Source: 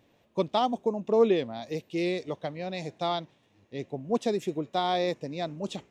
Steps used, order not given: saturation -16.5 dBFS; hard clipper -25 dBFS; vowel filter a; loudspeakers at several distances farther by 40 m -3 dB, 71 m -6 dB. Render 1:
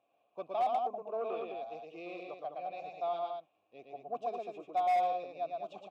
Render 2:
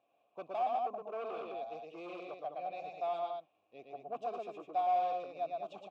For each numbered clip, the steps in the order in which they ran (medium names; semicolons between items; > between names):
loudspeakers at several distances > saturation > vowel filter > hard clipper; saturation > loudspeakers at several distances > hard clipper > vowel filter